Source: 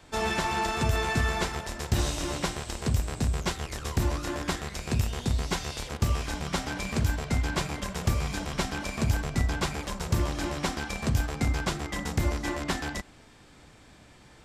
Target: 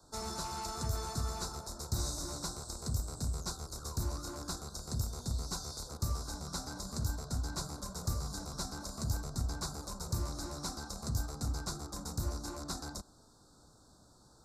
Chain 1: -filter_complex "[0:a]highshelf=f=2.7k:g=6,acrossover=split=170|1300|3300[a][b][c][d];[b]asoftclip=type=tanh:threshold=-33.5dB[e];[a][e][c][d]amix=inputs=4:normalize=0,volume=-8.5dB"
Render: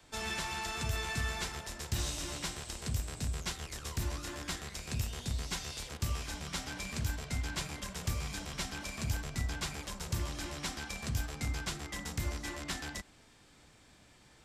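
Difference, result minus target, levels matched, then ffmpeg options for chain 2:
2000 Hz band +10.5 dB
-filter_complex "[0:a]asuperstop=centerf=2400:order=12:qfactor=1,highshelf=f=2.7k:g=6,acrossover=split=170|1300|3300[a][b][c][d];[b]asoftclip=type=tanh:threshold=-33.5dB[e];[a][e][c][d]amix=inputs=4:normalize=0,volume=-8.5dB"

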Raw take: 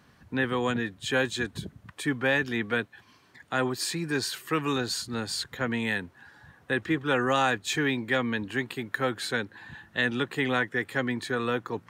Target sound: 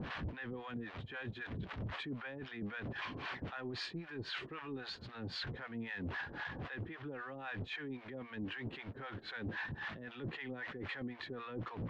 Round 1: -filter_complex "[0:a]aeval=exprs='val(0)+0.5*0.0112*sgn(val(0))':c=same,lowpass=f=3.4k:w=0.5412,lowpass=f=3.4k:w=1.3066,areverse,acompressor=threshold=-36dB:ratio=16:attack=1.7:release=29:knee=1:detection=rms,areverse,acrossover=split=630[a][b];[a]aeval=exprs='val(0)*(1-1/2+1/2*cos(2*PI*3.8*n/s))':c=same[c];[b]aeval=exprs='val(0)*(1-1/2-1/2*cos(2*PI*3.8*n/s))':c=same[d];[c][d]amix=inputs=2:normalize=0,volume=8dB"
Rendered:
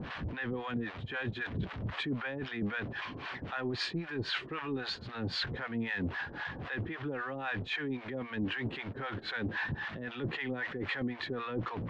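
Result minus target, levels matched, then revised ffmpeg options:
compressor: peak gain reduction -8 dB
-filter_complex "[0:a]aeval=exprs='val(0)+0.5*0.0112*sgn(val(0))':c=same,lowpass=f=3.4k:w=0.5412,lowpass=f=3.4k:w=1.3066,areverse,acompressor=threshold=-44.5dB:ratio=16:attack=1.7:release=29:knee=1:detection=rms,areverse,acrossover=split=630[a][b];[a]aeval=exprs='val(0)*(1-1/2+1/2*cos(2*PI*3.8*n/s))':c=same[c];[b]aeval=exprs='val(0)*(1-1/2-1/2*cos(2*PI*3.8*n/s))':c=same[d];[c][d]amix=inputs=2:normalize=0,volume=8dB"

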